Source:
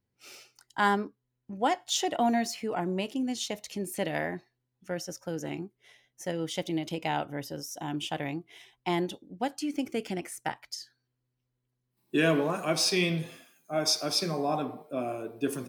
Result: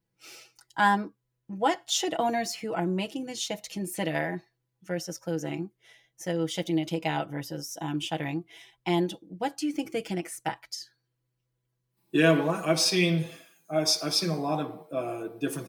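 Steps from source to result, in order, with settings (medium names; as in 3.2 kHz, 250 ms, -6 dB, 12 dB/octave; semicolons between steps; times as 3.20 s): comb 6.1 ms, depth 70%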